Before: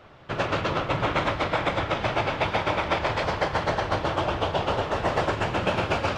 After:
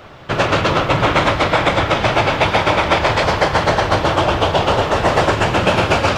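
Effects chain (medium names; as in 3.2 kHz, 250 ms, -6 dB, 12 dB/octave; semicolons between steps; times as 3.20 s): treble shelf 6.5 kHz +7.5 dB; in parallel at -4 dB: saturation -22 dBFS, distortion -12 dB; on the sum: trim +7 dB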